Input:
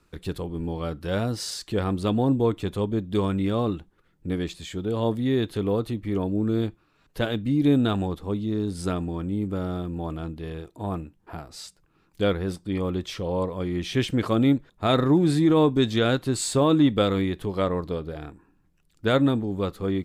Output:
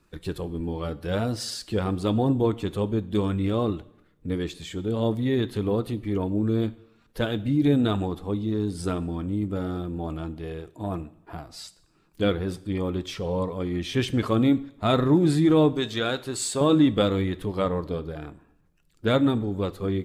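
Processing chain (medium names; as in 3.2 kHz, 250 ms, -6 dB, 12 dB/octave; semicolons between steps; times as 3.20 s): coarse spectral quantiser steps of 15 dB; 15.73–16.61 s: bass shelf 410 Hz -10 dB; two-slope reverb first 0.76 s, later 2.1 s, from -27 dB, DRR 15.5 dB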